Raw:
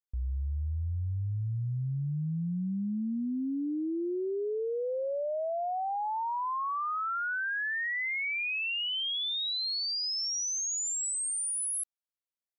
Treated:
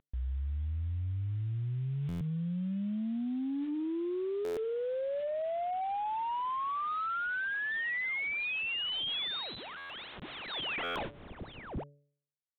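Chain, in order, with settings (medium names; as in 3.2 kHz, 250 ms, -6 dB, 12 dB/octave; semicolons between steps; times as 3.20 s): CVSD coder 32 kbps; de-hum 143.8 Hz, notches 4; in parallel at +2.5 dB: gain riding 0.5 s; on the sum: peak limiter -23.5 dBFS, peak gain reduction 5.5 dB; reverse; compression 12:1, threshold -40 dBFS, peak gain reduction 14.5 dB; reverse; saturation -34.5 dBFS, distortion -28 dB; resampled via 8 kHz; buffer glitch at 2.08/4.44/9.77/10.83 s, samples 512, times 10; trim +8 dB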